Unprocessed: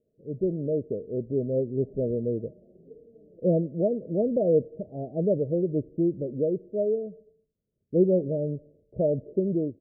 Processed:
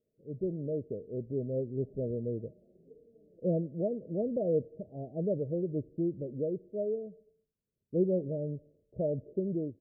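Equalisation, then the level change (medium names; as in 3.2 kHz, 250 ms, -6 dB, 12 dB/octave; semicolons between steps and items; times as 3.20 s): dynamic bell 100 Hz, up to +4 dB, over -44 dBFS, Q 1.1; -7.5 dB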